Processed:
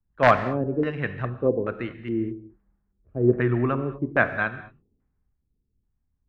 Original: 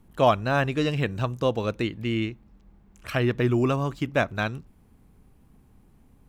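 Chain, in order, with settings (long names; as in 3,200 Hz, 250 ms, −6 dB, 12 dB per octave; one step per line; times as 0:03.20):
wrap-around overflow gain 9 dB
auto-filter low-pass square 1.2 Hz 410–1,700 Hz
reverb whose tail is shaped and stops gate 250 ms flat, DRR 8.5 dB
multiband upward and downward expander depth 70%
level −3 dB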